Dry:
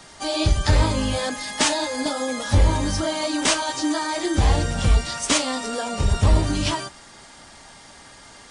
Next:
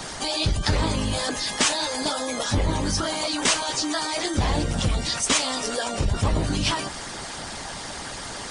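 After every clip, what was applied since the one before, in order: harmonic-percussive split harmonic -14 dB; fast leveller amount 50%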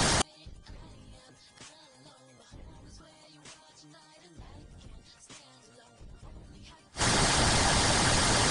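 octaver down 1 oct, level +2 dB; flipped gate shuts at -20 dBFS, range -38 dB; gain +8.5 dB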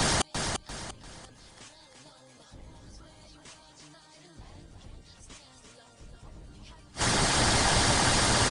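feedback echo 0.345 s, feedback 37%, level -5.5 dB

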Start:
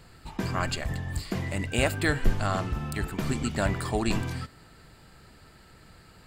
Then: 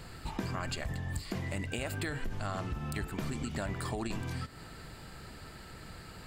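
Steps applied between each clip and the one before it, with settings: limiter -18.5 dBFS, peak gain reduction 8 dB; compressor 5:1, threshold -39 dBFS, peak gain reduction 15.5 dB; gain +5 dB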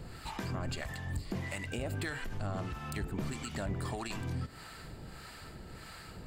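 harmonic tremolo 1.6 Hz, depth 70%, crossover 690 Hz; soft clip -30 dBFS, distortion -20 dB; gain +3.5 dB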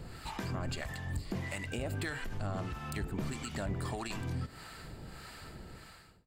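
ending faded out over 0.64 s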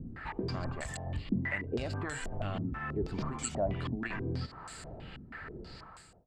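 stepped low-pass 6.2 Hz 250–7900 Hz

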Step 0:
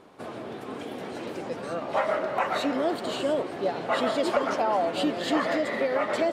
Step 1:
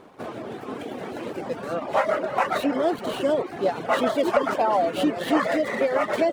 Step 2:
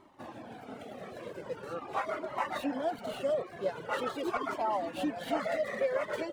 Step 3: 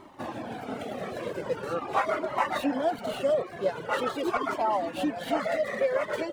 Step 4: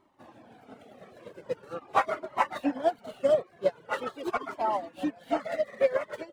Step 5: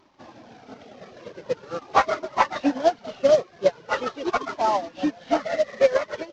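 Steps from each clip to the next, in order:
median filter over 9 samples; reverb removal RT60 0.63 s; gain +4.5 dB
cascading flanger falling 0.43 Hz; gain -5.5 dB
vocal rider within 4 dB 2 s; gain +5.5 dB
upward expander 2.5:1, over -35 dBFS; gain +3.5 dB
CVSD 32 kbps; gain +6.5 dB

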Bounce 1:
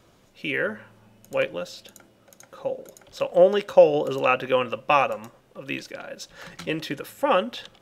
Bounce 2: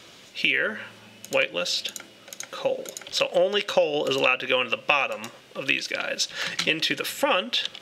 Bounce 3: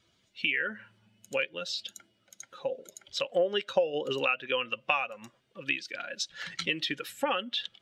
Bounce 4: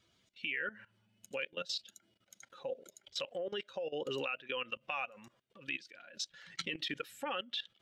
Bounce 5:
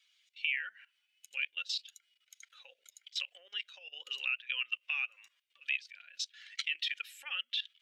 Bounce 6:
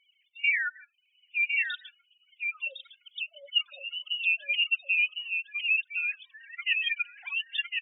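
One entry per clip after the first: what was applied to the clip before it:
weighting filter D; compressor 4:1, threshold -27 dBFS, peak gain reduction 15 dB; gain +6.5 dB
per-bin expansion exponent 1.5; high shelf 7200 Hz -8.5 dB; gain -3.5 dB
level quantiser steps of 18 dB; gain -1 dB
resonant high-pass 2400 Hz, resonance Q 2
sine-wave speech; spectral gate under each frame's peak -10 dB strong; echo 1.057 s -5 dB; gain +8.5 dB

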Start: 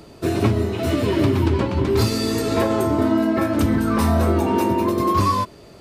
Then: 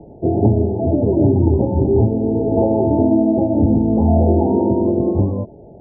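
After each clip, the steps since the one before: Chebyshev low-pass 880 Hz, order 8; gain +5 dB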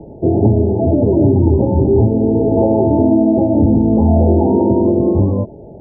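notch 720 Hz, Q 14; in parallel at +2.5 dB: limiter -12.5 dBFS, peak gain reduction 10 dB; on the sum: gain -2 dB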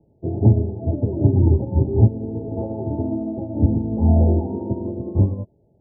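bell 100 Hz +8 dB 2 oct; upward expander 2.5:1, over -17 dBFS; gain -5.5 dB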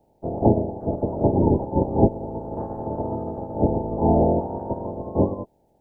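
spectral limiter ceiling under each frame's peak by 25 dB; gain -3 dB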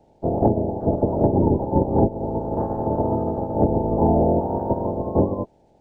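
compressor 6:1, threshold -20 dBFS, peak gain reduction 9.5 dB; decimation joined by straight lines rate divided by 3×; gain +6 dB

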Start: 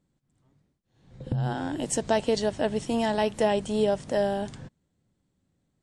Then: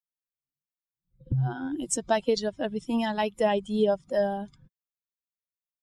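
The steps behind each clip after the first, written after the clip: per-bin expansion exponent 2; gain +3 dB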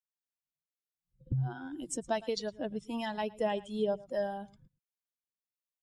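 echo 0.111 s -21 dB; harmonic tremolo 1.5 Hz, depth 50%, crossover 660 Hz; gain -5 dB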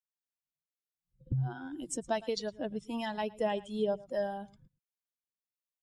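nothing audible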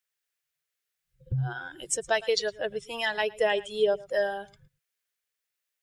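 EQ curve 150 Hz 0 dB, 280 Hz -20 dB, 400 Hz +6 dB, 950 Hz 0 dB, 1700 Hz +12 dB, 4200 Hz +7 dB; gain +3 dB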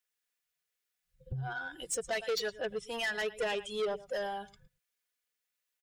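comb 4.1 ms, depth 53%; soft clip -26 dBFS, distortion -8 dB; gain -2.5 dB

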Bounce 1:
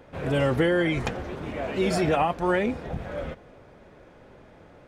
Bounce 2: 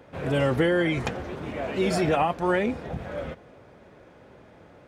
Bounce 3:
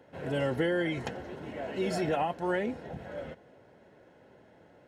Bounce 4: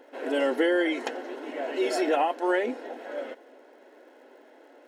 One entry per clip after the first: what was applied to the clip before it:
HPF 61 Hz
notch comb 1200 Hz; gain -6 dB
crackle 140/s -64 dBFS; brick-wall FIR high-pass 240 Hz; gain +5.5 dB

